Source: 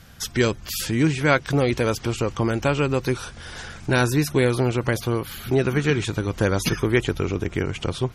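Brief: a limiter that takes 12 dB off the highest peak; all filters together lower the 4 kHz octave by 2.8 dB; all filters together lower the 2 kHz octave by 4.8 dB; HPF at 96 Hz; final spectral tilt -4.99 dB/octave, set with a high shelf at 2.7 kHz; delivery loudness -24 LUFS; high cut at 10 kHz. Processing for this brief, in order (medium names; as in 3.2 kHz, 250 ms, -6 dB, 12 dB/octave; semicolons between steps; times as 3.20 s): high-pass 96 Hz; low-pass 10 kHz; peaking EQ 2 kHz -7.5 dB; treble shelf 2.7 kHz +5.5 dB; peaking EQ 4 kHz -6 dB; trim +5 dB; peak limiter -12.5 dBFS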